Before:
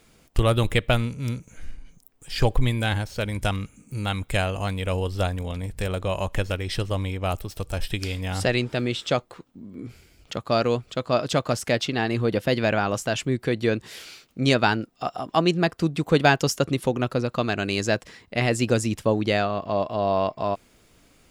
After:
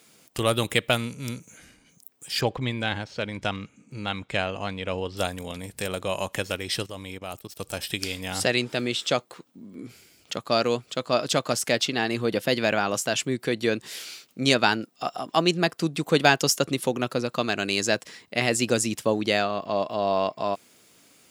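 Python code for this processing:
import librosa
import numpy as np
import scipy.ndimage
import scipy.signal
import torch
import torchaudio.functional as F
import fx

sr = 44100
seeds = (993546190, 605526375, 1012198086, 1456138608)

y = fx.air_absorb(x, sr, metres=150.0, at=(2.41, 5.17))
y = fx.level_steps(y, sr, step_db=16, at=(6.86, 7.6))
y = scipy.signal.sosfilt(scipy.signal.butter(2, 160.0, 'highpass', fs=sr, output='sos'), y)
y = fx.high_shelf(y, sr, hz=3300.0, db=8.5)
y = F.gain(torch.from_numpy(y), -1.5).numpy()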